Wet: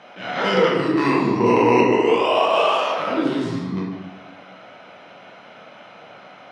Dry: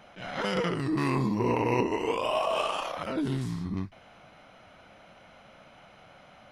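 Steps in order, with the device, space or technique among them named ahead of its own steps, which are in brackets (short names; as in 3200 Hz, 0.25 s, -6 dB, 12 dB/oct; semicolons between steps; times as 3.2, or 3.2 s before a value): supermarket ceiling speaker (BPF 210–5400 Hz; reverb RT60 1.1 s, pre-delay 9 ms, DRR -2 dB); 1.45–1.86 high shelf 6500 Hz -> 9200 Hz +11.5 dB; gain +7 dB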